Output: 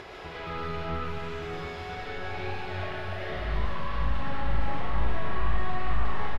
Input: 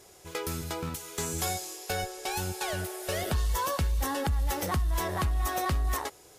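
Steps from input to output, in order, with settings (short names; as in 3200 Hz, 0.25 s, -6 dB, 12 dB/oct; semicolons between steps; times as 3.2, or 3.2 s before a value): one-sided fold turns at -26.5 dBFS; doubler 41 ms -5.5 dB; on a send: echo with dull and thin repeats by turns 0.29 s, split 1000 Hz, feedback 79%, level -13 dB; on the sum: limiter -28 dBFS, peak gain reduction 10 dB; overdrive pedal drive 22 dB, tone 1400 Hz, clips at -27.5 dBFS; bell 530 Hz -13 dB 2.9 oct; digital reverb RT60 1.8 s, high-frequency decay 0.8×, pre-delay 70 ms, DRR -8 dB; upward compressor, threshold -34 dBFS; air absorption 370 m; gain +4 dB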